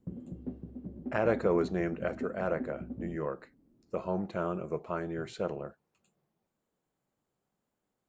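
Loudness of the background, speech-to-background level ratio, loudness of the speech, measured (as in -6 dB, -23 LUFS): -42.5 LUFS, 8.5 dB, -34.0 LUFS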